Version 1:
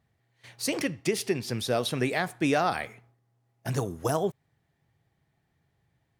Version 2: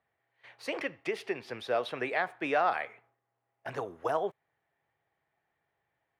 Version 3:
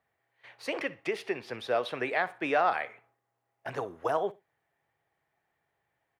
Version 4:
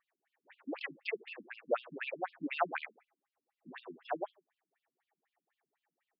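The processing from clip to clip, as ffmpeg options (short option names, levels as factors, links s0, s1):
-filter_complex "[0:a]acrossover=split=420 3000:gain=0.112 1 0.0708[s0][s1][s2];[s0][s1][s2]amix=inputs=3:normalize=0"
-af "aecho=1:1:61|122:0.0944|0.0198,volume=1.19"
-af "aeval=exprs='0.2*(cos(1*acos(clip(val(0)/0.2,-1,1)))-cos(1*PI/2))+0.0141*(cos(2*acos(clip(val(0)/0.2,-1,1)))-cos(2*PI/2))':c=same,afftfilt=real='re*between(b*sr/1024,210*pow(3800/210,0.5+0.5*sin(2*PI*4*pts/sr))/1.41,210*pow(3800/210,0.5+0.5*sin(2*PI*4*pts/sr))*1.41)':imag='im*between(b*sr/1024,210*pow(3800/210,0.5+0.5*sin(2*PI*4*pts/sr))/1.41,210*pow(3800/210,0.5+0.5*sin(2*PI*4*pts/sr))*1.41)':win_size=1024:overlap=0.75,volume=1.12"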